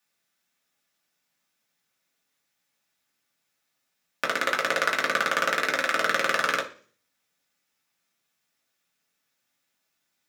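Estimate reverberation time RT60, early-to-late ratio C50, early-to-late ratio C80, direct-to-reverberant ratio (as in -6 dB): 0.45 s, 12.5 dB, 17.0 dB, -2.0 dB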